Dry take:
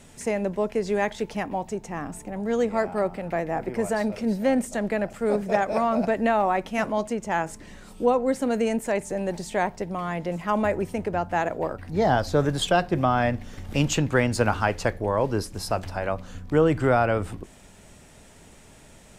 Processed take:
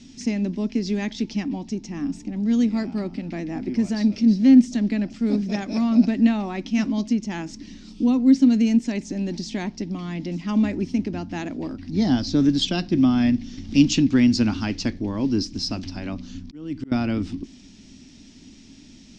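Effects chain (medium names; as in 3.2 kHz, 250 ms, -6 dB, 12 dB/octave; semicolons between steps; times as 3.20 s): FFT filter 150 Hz 0 dB, 270 Hz +15 dB, 480 Hz -12 dB, 1.5 kHz -9 dB, 2.3 kHz 0 dB, 5.5 kHz +11 dB, 11 kHz -26 dB; 16.39–16.92 s: slow attack 761 ms; trim -1 dB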